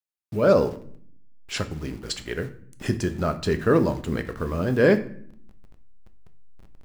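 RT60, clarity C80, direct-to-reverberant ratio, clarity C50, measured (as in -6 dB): 0.60 s, 18.0 dB, 8.5 dB, 14.5 dB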